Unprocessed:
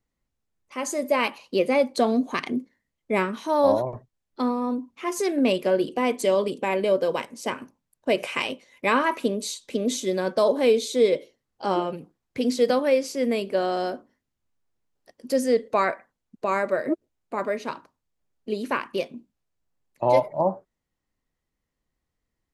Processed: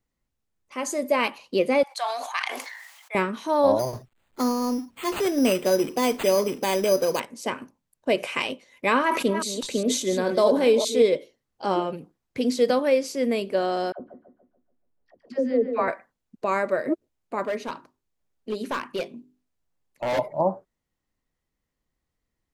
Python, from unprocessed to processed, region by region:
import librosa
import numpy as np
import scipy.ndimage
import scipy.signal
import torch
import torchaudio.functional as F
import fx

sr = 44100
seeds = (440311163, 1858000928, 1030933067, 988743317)

y = fx.chain(x, sr, fx.cheby1_highpass(hz=780.0, order=4),
    fx.sustainer(db_per_s=41.0), at=(1.83, 3.15))
y = fx.chain(y, sr, fx.law_mismatch(coded='mu'),
    fx.resample_bad(factor=8, down='none', up='hold'), at=(3.79, 7.2))
y = fx.chain(y, sr, fx.reverse_delay(ms=203, wet_db=-8),
    fx.sustainer(db_per_s=75.0), at=(9.02, 11.02))
y = fx.chain(y, sr, fx.spacing_loss(db_at_10k=34),
    fx.dispersion(late='lows', ms=77.0, hz=690.0),
    fx.echo_wet_lowpass(ms=144, feedback_pct=41, hz=2500.0, wet_db=-8.0), at=(13.92, 15.88))
y = fx.chain(y, sr, fx.hum_notches(base_hz=50, count=8),
    fx.overload_stage(gain_db=22.5), at=(17.45, 20.19))